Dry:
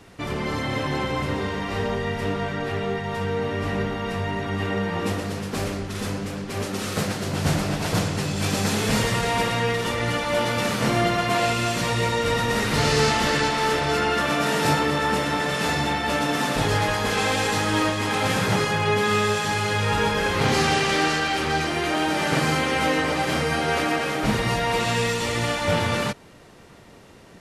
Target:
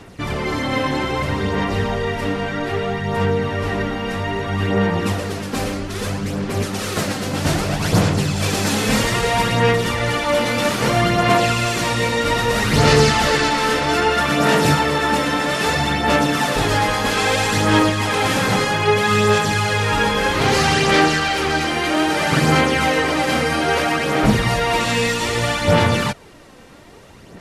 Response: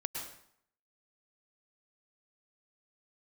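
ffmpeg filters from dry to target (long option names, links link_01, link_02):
-af "aphaser=in_gain=1:out_gain=1:delay=3.9:decay=0.4:speed=0.62:type=sinusoidal,volume=4dB"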